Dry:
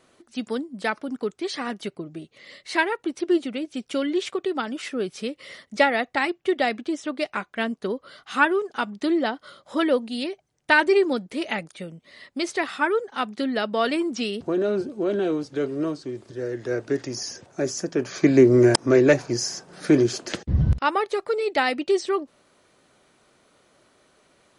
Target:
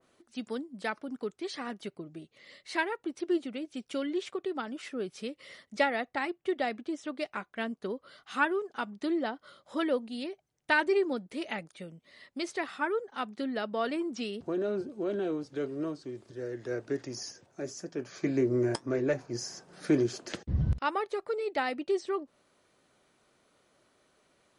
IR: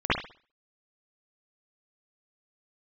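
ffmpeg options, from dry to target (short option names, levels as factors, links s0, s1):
-filter_complex "[0:a]asplit=3[s0][s1][s2];[s0]afade=t=out:st=17.3:d=0.02[s3];[s1]flanger=delay=6.1:depth=3.5:regen=-65:speed=1.9:shape=triangular,afade=t=in:st=17.3:d=0.02,afade=t=out:st=19.33:d=0.02[s4];[s2]afade=t=in:st=19.33:d=0.02[s5];[s3][s4][s5]amix=inputs=3:normalize=0,adynamicequalizer=threshold=0.0126:dfrequency=1900:dqfactor=0.7:tfrequency=1900:tqfactor=0.7:attack=5:release=100:ratio=0.375:range=3.5:mode=cutabove:tftype=highshelf,volume=0.398"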